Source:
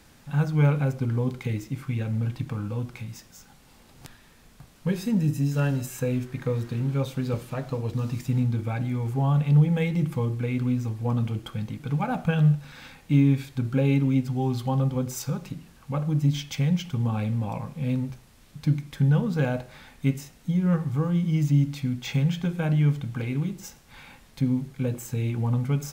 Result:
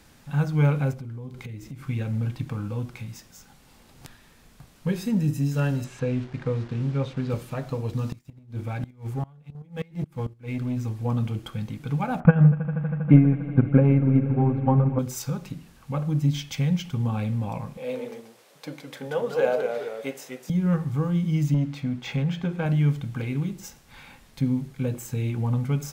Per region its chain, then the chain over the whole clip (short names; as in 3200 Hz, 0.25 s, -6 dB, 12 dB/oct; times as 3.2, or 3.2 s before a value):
0.93–1.88 low shelf 150 Hz +6 dB + compressor 5:1, threshold -35 dBFS
5.84–7.3 level-crossing sampler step -42 dBFS + LPF 4400 Hz
8.12–10.77 sample leveller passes 2 + chopper 1.4 Hz, depth 65%, duty 10% + flipped gate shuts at -22 dBFS, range -25 dB
12.2–14.99 LPF 1900 Hz 24 dB/oct + transient shaper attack +11 dB, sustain -10 dB + swelling echo 80 ms, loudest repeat 5, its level -18 dB
17.77–20.5 resonant high-pass 520 Hz, resonance Q 2.8 + echoes that change speed 0.113 s, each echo -1 st, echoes 2, each echo -6 dB
21.54–22.66 LPF 2000 Hz 6 dB/oct + low shelf 140 Hz -10.5 dB + sample leveller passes 1
whole clip: dry